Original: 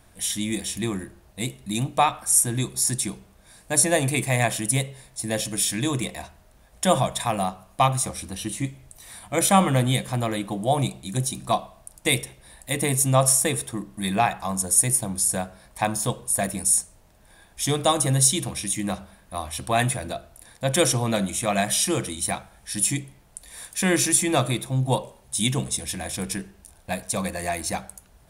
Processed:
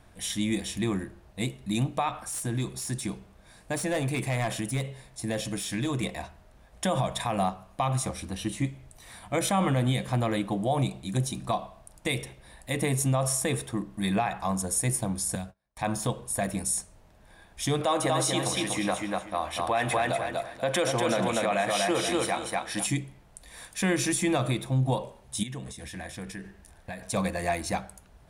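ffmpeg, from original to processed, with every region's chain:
-filter_complex "[0:a]asettb=1/sr,asplit=3[a][b][c];[a]atrim=end=2.154[d];[b]atrim=start=2.15:end=6.03,asetpts=PTS-STARTPTS,afade=t=in:d=0.004:c=qsin,afade=t=out:st=3.876:d=0.004:c=qsin,volume=18.5dB,asoftclip=hard,volume=-18.5dB,acompressor=threshold=-25dB:ratio=4:attack=3.2:release=140:knee=1:detection=peak[e];[c]atrim=start=6.026[f];[d][e]acrossfade=d=0.004:c1=hsin:c2=qsin[g];[g][f]acrossfade=d=0.004:c1=qsin:c2=hsin,asettb=1/sr,asplit=3[h][i][j];[h]atrim=end=15.354[k];[i]atrim=start=15.35:end=15.83,asetpts=PTS-STARTPTS,afade=t=in:d=0.004:c=qsin,afade=t=out:st=0.476:d=0.004:c=qsin,agate=range=-31dB:threshold=-43dB:ratio=16:release=100:detection=peak,acrossover=split=190|3000[l][m][n];[m]acompressor=threshold=-48dB:ratio=2:attack=3.2:release=140:knee=2.83:detection=peak[o];[l][o][n]amix=inputs=3:normalize=0[p];[j]atrim=start=15.826[q];[k][p]acrossfade=d=0.004:c1=hsin:c2=qsin[r];[r][q]acrossfade=d=0.004:c1=qsin:c2=hsin,asettb=1/sr,asplit=3[s][t][u];[s]atrim=end=17.814[v];[t]atrim=start=17.81:end=22.87,asetpts=PTS-STARTPTS,afade=t=in:d=0.004:c=qsin,afade=t=out:st=5.056:d=0.004:c=qsin,bass=f=250:g=-14,treble=f=4k:g=-7,acontrast=50,aecho=1:1:241|482|723:0.596|0.143|0.0343,atrim=end_sample=223146[w];[u]atrim=start=22.866[x];[v][w]acrossfade=d=0.004:c1=hsin:c2=qsin[y];[y][x]acrossfade=d=0.004:c1=qsin:c2=hsin,asettb=1/sr,asplit=3[z][aa][ab];[z]atrim=end=25.434[ac];[aa]atrim=start=25.43:end=27.04,asetpts=PTS-STARTPTS,afade=t=in:d=0.004:c=qsin,afade=t=out:st=1.606:d=0.004:c=qsin,equalizer=f=1.8k:t=o:w=0.28:g=8,acompressor=threshold=-34dB:ratio=5:attack=3.2:release=140:knee=1:detection=peak[ad];[ab]atrim=start=27.036[ae];[ac][ad]acrossfade=d=0.004:c1=hsin:c2=qsin[af];[af][ae]acrossfade=d=0.004:c1=qsin:c2=hsin,lowpass=f=3.5k:p=1,alimiter=limit=-17dB:level=0:latency=1:release=79"

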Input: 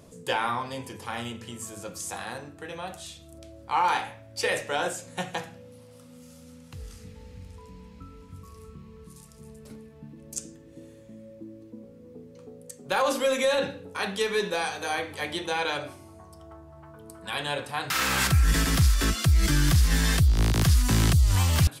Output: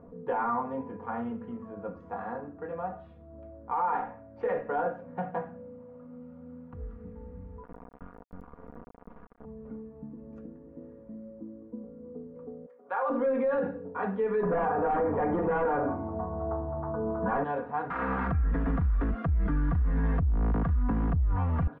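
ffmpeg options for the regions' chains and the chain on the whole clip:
-filter_complex "[0:a]asettb=1/sr,asplit=3[a][b][c];[a]atrim=end=7.634[d];[b]atrim=start=7.63:end=9.45,asetpts=PTS-STARTPTS,afade=t=in:d=0.004:c=qsin,afade=t=out:st=1.816:d=0.004:c=qsin,aemphasis=mode=production:type=50kf,acrusher=bits=4:dc=4:mix=0:aa=0.000001[e];[c]atrim=start=9.446[f];[d][e]acrossfade=d=0.004:c1=hsin:c2=qsin[g];[g][f]acrossfade=d=0.004:c1=qsin:c2=hsin,asettb=1/sr,asplit=3[h][i][j];[h]atrim=end=12.664[k];[i]atrim=start=12.66:end=13.1,asetpts=PTS-STARTPTS,afade=t=in:d=0.004:c=qsin,afade=t=out:st=0.436:d=0.004:c=qsin,highpass=720,asplit=2[l][m];[m]adelay=34,volume=-13.5dB[n];[l][n]amix=inputs=2:normalize=0,atrim=end_sample=19404[o];[j]atrim=start=13.096[p];[k][o]acrossfade=d=0.004:c1=hsin:c2=qsin[q];[q][p]acrossfade=d=0.004:c1=qsin:c2=hsin,asettb=1/sr,asplit=3[r][s][t];[r]atrim=end=14.434[u];[s]atrim=start=14.43:end=17.44,asetpts=PTS-STARTPTS,afade=t=in:d=0.004:c=qsin,afade=t=out:st=3.006:d=0.004:c=qsin,lowpass=1.5k,aeval=exprs='0.141*sin(PI/2*3.55*val(0)/0.141)':c=same[v];[t]atrim=start=17.436[w];[u][v]acrossfade=d=0.004:c1=hsin:c2=qsin[x];[x][w]acrossfade=d=0.004:c1=qsin:c2=hsin,lowpass=f=1.3k:w=0.5412,lowpass=f=1.3k:w=1.3066,aecho=1:1:4.2:0.66,alimiter=limit=-21dB:level=0:latency=1:release=26"

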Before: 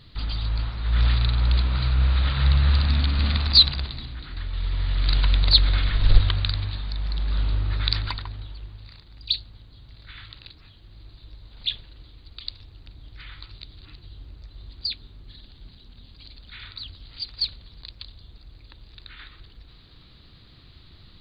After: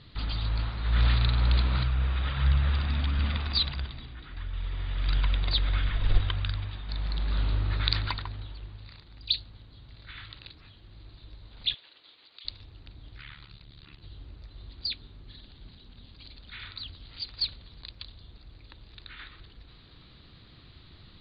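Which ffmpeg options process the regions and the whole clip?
-filter_complex "[0:a]asettb=1/sr,asplit=3[a][b][c];[a]atrim=end=1.834[d];[b]atrim=start=1.83:end=6.89,asetpts=PTS-STARTPTS,afade=t=in:d=0.004:c=qsin,afade=t=out:st=5.056:d=0.004:c=qsin,bandreject=f=4.2k:w=5.8,flanger=delay=0.6:depth=2.2:regen=71:speed=1.5:shape=sinusoidal[e];[c]atrim=start=6.886[f];[d][e]acrossfade=d=0.004:c1=hsin:c2=qsin[g];[g][f]acrossfade=d=0.004:c1=qsin:c2=hsin,asettb=1/sr,asplit=3[h][i][j];[h]atrim=end=11.744[k];[i]atrim=start=11.74:end=12.45,asetpts=PTS-STARTPTS,afade=t=in:d=0.004:c=qsin,afade=t=out:st=0.706:d=0.004:c=qsin,acompressor=threshold=-45dB:ratio=6:attack=3.2:release=140:knee=1:detection=peak,highpass=490,lowpass=4.2k,highshelf=f=2.3k:g=11[l];[j]atrim=start=12.446[m];[k][l]acrossfade=d=0.004:c1=hsin:c2=qsin[n];[n][m]acrossfade=d=0.004:c1=qsin:c2=hsin,asettb=1/sr,asplit=3[o][p][q];[o]atrim=end=13.184[r];[p]atrim=start=13.18:end=14.01,asetpts=PTS-STARTPTS,afade=t=in:d=0.004:c=qsin,afade=t=out:st=0.826:d=0.004:c=qsin,acrossover=split=3300[s][t];[t]acompressor=threshold=-56dB:ratio=4:attack=1:release=60[u];[s][u]amix=inputs=2:normalize=0,tremolo=f=72:d=0.947,highshelf=f=3.1k:g=9[v];[q]atrim=start=14.006[w];[r][v]acrossfade=d=0.004:c1=hsin:c2=qsin[x];[x][w]acrossfade=d=0.004:c1=qsin:c2=hsin,lowpass=4.1k,lowshelf=f=64:g=-6"

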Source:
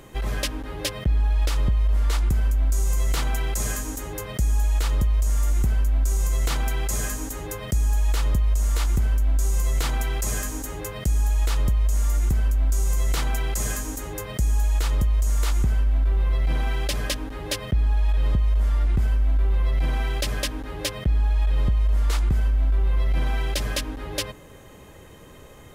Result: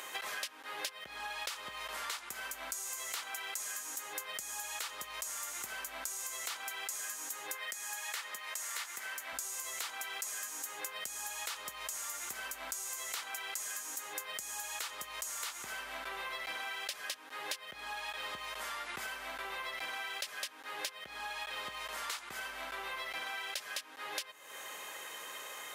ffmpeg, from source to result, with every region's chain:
-filter_complex "[0:a]asettb=1/sr,asplit=3[a][b][c];[a]atrim=end=7.554[d];[b]atrim=start=7.55:end=9.33,asetpts=PTS-STARTPTS,afade=t=in:d=0.004:c=qsin,afade=t=out:st=1.776:d=0.004:c=qsin,highpass=f=360:p=1,equalizer=f=1.9k:t=o:w=0.51:g=6[e];[c]atrim=start=9.326[f];[d][e]acrossfade=d=0.004:c1=hsin:c2=qsin[g];[g][f]acrossfade=d=0.004:c1=qsin:c2=hsin,highpass=1.1k,acompressor=threshold=-46dB:ratio=12,volume=8.5dB"

